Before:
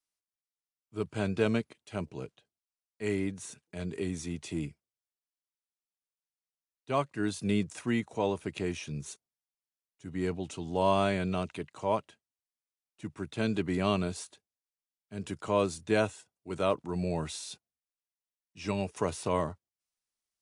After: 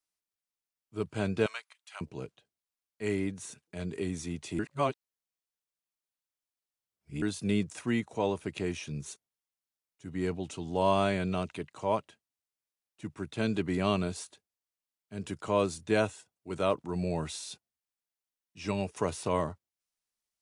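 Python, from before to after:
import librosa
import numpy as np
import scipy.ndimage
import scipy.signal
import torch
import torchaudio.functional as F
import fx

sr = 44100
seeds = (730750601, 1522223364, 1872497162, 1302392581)

y = fx.highpass(x, sr, hz=950.0, slope=24, at=(1.46, 2.01))
y = fx.edit(y, sr, fx.reverse_span(start_s=4.59, length_s=2.63), tone=tone)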